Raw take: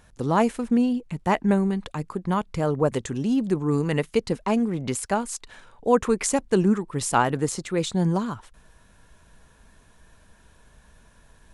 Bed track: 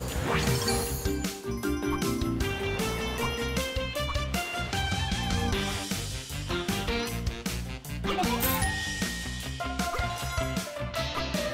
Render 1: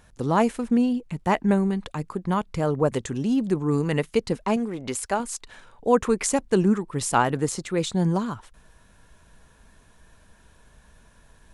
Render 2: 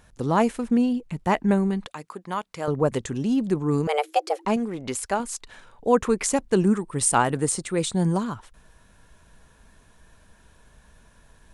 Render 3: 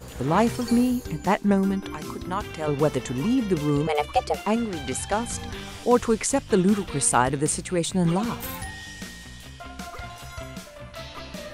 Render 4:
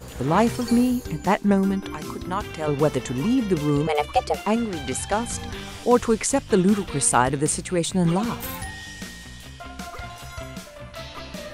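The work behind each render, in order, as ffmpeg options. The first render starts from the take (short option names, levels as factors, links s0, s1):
-filter_complex "[0:a]asettb=1/sr,asplit=3[s0][s1][s2];[s0]atrim=end=4.564[s3];[s1]atrim=start=4.56:end=5.2,asetpts=PTS-STARTPTS,afade=t=in:d=0.004:c=qsin,afade=t=out:st=0.636:d=0.004:c=qsin,equalizer=f=150:w=1.2:g=-9.5[s4];[s2]atrim=start=5.196[s5];[s3][s4]acrossfade=d=0.004:c1=hsin:c2=qsin[s6];[s6][s5]acrossfade=d=0.004:c1=qsin:c2=hsin"
-filter_complex "[0:a]asettb=1/sr,asplit=3[s0][s1][s2];[s0]atrim=end=1.864[s3];[s1]atrim=start=1.86:end=2.68,asetpts=PTS-STARTPTS,afade=t=in:d=0.004:c=qsin,afade=t=out:st=0.816:d=0.004:c=qsin,highpass=f=720:p=1[s4];[s2]atrim=start=2.676[s5];[s3][s4]acrossfade=d=0.004:c1=hsin:c2=qsin[s6];[s6][s5]acrossfade=d=0.004:c1=qsin:c2=hsin,asettb=1/sr,asplit=3[s7][s8][s9];[s7]atrim=end=3.874[s10];[s8]atrim=start=3.87:end=4.45,asetpts=PTS-STARTPTS,afade=t=in:d=0.004:c=qsin,afade=t=out:st=0.576:d=0.004:c=qsin,afreqshift=300[s11];[s9]atrim=start=4.446[s12];[s10][s11]acrossfade=d=0.004:c1=hsin:c2=qsin[s13];[s13][s12]acrossfade=d=0.004:c1=qsin:c2=hsin,asettb=1/sr,asplit=3[s14][s15][s16];[s14]atrim=end=6.634[s17];[s15]atrim=start=6.63:end=8.24,asetpts=PTS-STARTPTS,afade=t=in:d=0.004:c=qsin,afade=t=out:st=1.606:d=0.004:c=qsin,equalizer=f=8800:w=4.7:g=12.5[s18];[s16]atrim=start=8.236[s19];[s17][s18]acrossfade=d=0.004:c1=hsin:c2=qsin[s20];[s20][s19]acrossfade=d=0.004:c1=qsin:c2=hsin"
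-filter_complex "[1:a]volume=0.447[s0];[0:a][s0]amix=inputs=2:normalize=0"
-af "volume=1.19"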